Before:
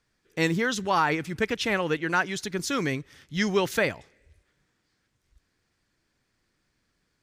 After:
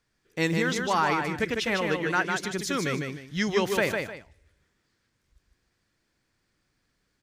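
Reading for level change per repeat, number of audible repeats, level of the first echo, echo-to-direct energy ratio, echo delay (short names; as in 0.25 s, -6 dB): -10.5 dB, 2, -4.5 dB, -4.0 dB, 0.152 s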